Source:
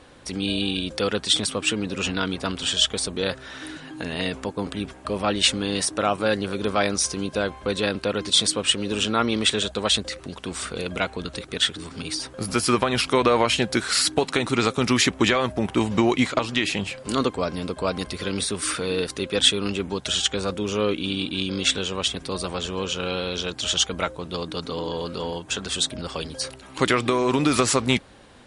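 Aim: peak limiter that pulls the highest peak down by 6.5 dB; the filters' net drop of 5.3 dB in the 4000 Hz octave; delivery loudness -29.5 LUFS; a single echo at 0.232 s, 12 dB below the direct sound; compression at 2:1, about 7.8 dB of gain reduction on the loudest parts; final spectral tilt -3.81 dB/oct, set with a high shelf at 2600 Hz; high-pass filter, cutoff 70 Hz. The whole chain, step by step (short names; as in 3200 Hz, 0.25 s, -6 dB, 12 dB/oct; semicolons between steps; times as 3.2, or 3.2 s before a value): HPF 70 Hz; high shelf 2600 Hz -3.5 dB; bell 4000 Hz -4 dB; compressor 2:1, threshold -30 dBFS; limiter -19 dBFS; echo 0.232 s -12 dB; gain +2.5 dB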